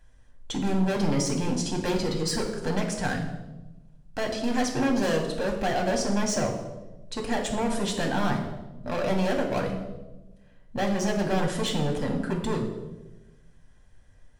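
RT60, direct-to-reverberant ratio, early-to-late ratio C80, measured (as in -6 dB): 1.1 s, 1.0 dB, 9.0 dB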